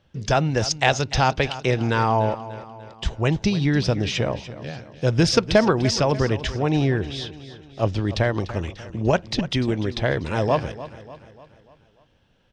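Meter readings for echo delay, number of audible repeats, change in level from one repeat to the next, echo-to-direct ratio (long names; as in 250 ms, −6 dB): 295 ms, 4, −6.0 dB, −13.5 dB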